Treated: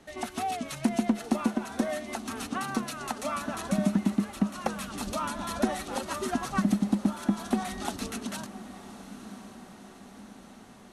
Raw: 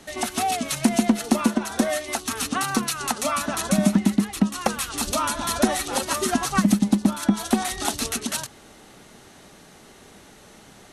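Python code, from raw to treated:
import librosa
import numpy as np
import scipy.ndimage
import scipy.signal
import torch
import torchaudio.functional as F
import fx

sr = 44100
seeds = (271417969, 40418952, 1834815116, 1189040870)

y = fx.high_shelf(x, sr, hz=3200.0, db=-8.5)
y = fx.echo_diffused(y, sr, ms=1054, feedback_pct=59, wet_db=-14.5)
y = F.gain(torch.from_numpy(y), -6.5).numpy()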